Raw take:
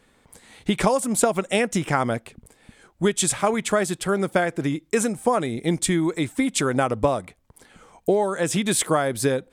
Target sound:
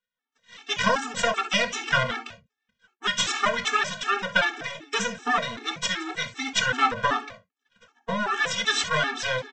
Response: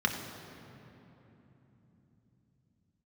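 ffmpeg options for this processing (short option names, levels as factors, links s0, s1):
-filter_complex "[0:a]acrossover=split=500|1700[s0][s1][s2];[s0]asoftclip=type=tanh:threshold=0.0398[s3];[s3][s1][s2]amix=inputs=3:normalize=0,equalizer=f=99:w=0.3:g=-14.5,asplit=2[s4][s5];[s5]adelay=174.9,volume=0.112,highshelf=f=4000:g=-3.94[s6];[s4][s6]amix=inputs=2:normalize=0,aresample=16000,aeval=exprs='max(val(0),0)':c=same,aresample=44100,lowshelf=f=410:g=-6,agate=range=0.0282:threshold=0.00178:ratio=16:detection=peak[s7];[1:a]atrim=start_sample=2205,atrim=end_sample=3528[s8];[s7][s8]afir=irnorm=-1:irlink=0,afftfilt=real='re*gt(sin(2*PI*2.6*pts/sr)*(1-2*mod(floor(b*sr/1024/230),2)),0)':imag='im*gt(sin(2*PI*2.6*pts/sr)*(1-2*mod(floor(b*sr/1024/230),2)),0)':win_size=1024:overlap=0.75,volume=1.58"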